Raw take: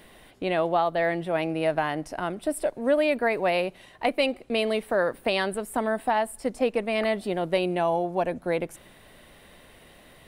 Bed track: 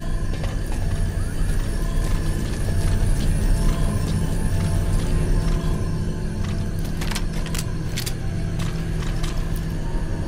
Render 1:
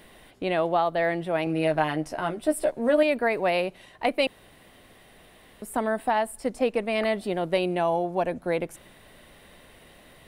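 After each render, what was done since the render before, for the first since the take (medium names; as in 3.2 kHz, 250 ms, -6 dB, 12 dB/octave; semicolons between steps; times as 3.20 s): 1.45–3.03 s: doubling 13 ms -4 dB; 4.27–5.62 s: room tone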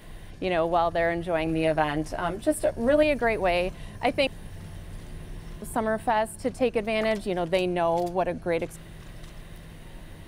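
add bed track -19.5 dB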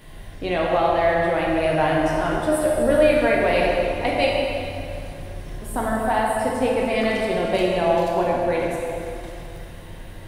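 plate-style reverb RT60 2.8 s, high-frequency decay 0.75×, DRR -4 dB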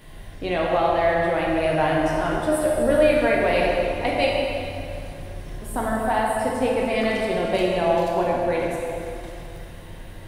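trim -1 dB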